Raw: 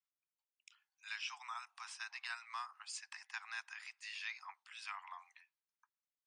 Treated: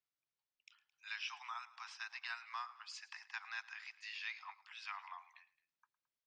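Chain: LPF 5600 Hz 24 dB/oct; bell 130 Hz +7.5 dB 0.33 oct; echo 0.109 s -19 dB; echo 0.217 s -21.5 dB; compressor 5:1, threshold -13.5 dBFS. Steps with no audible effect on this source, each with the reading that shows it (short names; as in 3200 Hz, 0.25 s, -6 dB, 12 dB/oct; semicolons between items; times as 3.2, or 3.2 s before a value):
bell 130 Hz: input band starts at 680 Hz; compressor, threshold -13.5 dBFS: input peak -29.5 dBFS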